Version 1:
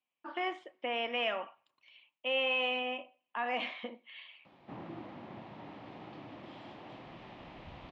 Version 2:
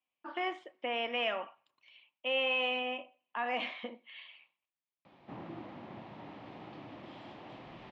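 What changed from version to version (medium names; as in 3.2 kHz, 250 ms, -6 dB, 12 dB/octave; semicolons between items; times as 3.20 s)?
background: entry +0.60 s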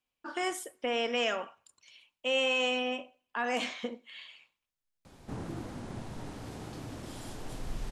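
master: remove cabinet simulation 230–3100 Hz, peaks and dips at 250 Hz -5 dB, 440 Hz -9 dB, 1.5 kHz -8 dB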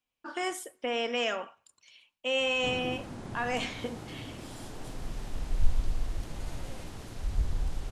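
background: entry -2.65 s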